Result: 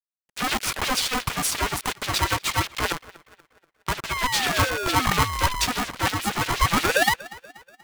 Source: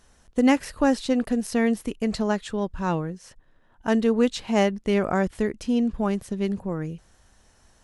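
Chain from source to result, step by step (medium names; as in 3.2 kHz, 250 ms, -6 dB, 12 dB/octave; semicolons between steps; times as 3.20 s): 2.92–4.31 s: power-law waveshaper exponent 3; rotary cabinet horn 6.7 Hz; in parallel at +2.5 dB: compression 6:1, threshold -34 dBFS, peak gain reduction 16 dB; 6.18–7.14 s: on the sum: painted sound rise 250–1500 Hz -30 dBFS; fuzz box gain 39 dB, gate -40 dBFS; LFO high-pass sine 8.4 Hz 390–3400 Hz; 4.10–5.66 s: painted sound fall 440–1700 Hz -22 dBFS; on a send: band-passed feedback delay 240 ms, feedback 49%, band-pass 1.1 kHz, level -19.5 dB; on the sum: polarity switched at an audio rate 510 Hz; trim -6.5 dB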